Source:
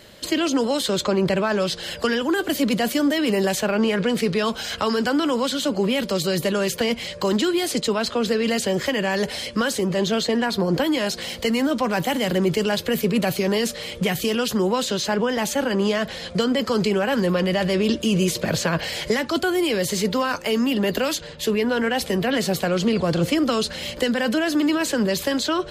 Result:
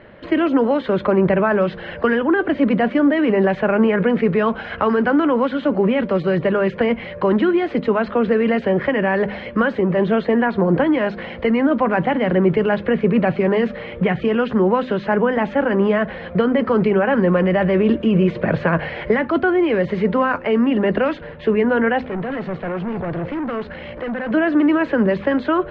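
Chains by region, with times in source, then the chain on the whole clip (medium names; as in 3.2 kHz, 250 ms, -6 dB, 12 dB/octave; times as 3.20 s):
22.01–24.31 s: AM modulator 58 Hz, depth 30% + hard clipper -27 dBFS
whole clip: low-pass 2.1 kHz 24 dB/octave; de-hum 50.58 Hz, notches 5; trim +5 dB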